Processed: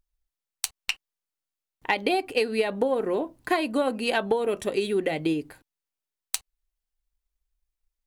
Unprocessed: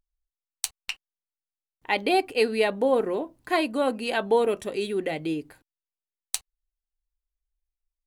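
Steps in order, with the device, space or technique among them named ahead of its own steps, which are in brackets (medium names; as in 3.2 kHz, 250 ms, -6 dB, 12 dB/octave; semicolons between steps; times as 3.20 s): drum-bus smash (transient shaper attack +5 dB, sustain +1 dB; compression 12:1, threshold -22 dBFS, peak gain reduction 10.5 dB; saturation -10 dBFS, distortion -22 dB); trim +2.5 dB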